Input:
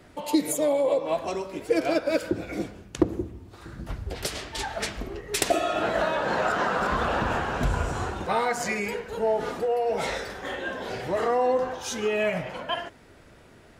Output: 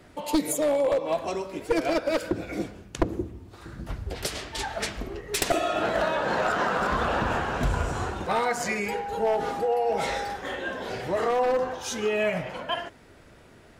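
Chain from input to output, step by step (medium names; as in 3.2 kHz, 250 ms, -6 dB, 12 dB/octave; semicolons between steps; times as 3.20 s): one-sided wavefolder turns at -17.5 dBFS; 8.88–10.35 s: whistle 810 Hz -31 dBFS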